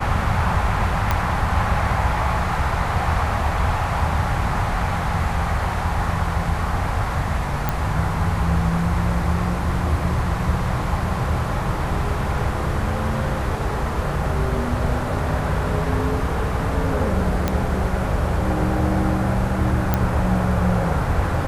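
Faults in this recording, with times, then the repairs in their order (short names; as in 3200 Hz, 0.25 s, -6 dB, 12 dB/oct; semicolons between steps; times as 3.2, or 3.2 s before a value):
1.11 pop -6 dBFS
7.69 pop
17.48 pop -7 dBFS
19.94 pop -5 dBFS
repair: de-click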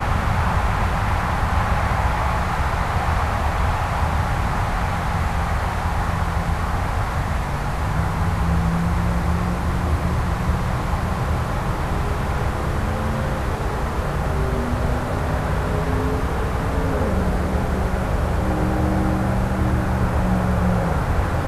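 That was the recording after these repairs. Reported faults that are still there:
none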